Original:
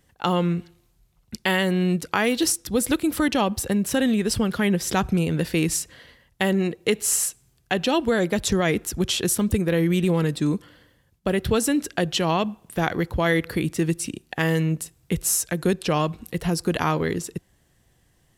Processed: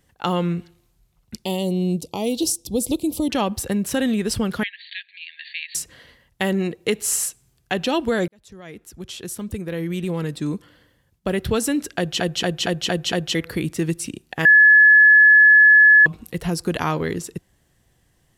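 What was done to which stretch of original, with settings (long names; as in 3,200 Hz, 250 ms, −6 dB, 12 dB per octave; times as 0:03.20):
0:01.45–0:03.30: Butterworth band-reject 1,600 Hz, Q 0.63
0:04.63–0:05.75: linear-phase brick-wall band-pass 1,600–4,600 Hz
0:08.28–0:11.28: fade in
0:11.97: stutter in place 0.23 s, 6 plays
0:14.45–0:16.06: beep over 1,710 Hz −7.5 dBFS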